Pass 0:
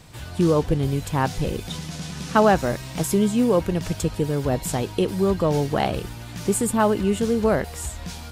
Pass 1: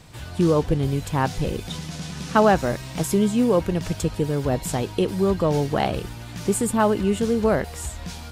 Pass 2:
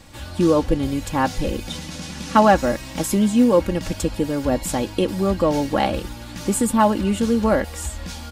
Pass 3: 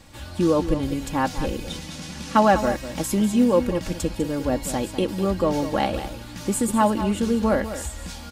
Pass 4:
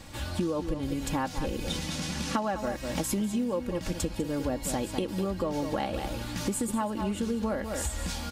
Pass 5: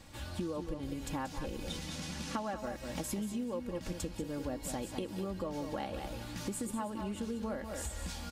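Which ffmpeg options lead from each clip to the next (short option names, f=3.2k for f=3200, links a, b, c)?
-af "highshelf=f=10k:g=-3.5"
-af "aecho=1:1:3.6:0.62,volume=1.5dB"
-af "aecho=1:1:199:0.266,volume=-3dB"
-af "acompressor=threshold=-29dB:ratio=10,volume=2.5dB"
-af "aecho=1:1:182:0.224,volume=-8dB"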